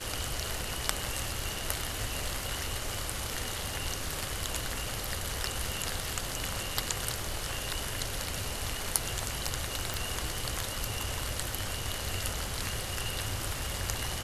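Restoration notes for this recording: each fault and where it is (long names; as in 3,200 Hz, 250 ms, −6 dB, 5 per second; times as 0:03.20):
0:09.94: click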